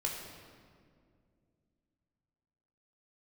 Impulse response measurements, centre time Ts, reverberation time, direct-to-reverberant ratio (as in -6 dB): 66 ms, 2.2 s, -1.5 dB